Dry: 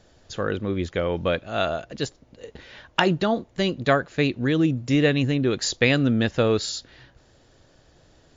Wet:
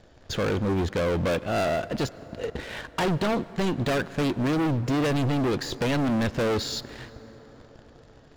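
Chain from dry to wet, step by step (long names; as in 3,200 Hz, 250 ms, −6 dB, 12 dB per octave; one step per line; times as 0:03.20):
de-essing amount 70%
low-pass filter 2,600 Hz 6 dB per octave
in parallel at −1 dB: downward compressor 4 to 1, threshold −35 dBFS, peak gain reduction 16.5 dB
on the sum: leveller curve on the samples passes 2
soft clipping −22.5 dBFS, distortion −7 dB
on a send at −17.5 dB: convolution reverb RT60 5.4 s, pre-delay 93 ms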